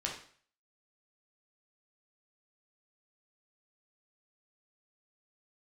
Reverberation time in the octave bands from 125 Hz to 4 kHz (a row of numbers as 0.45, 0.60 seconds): 0.50, 0.45, 0.50, 0.50, 0.50, 0.50 seconds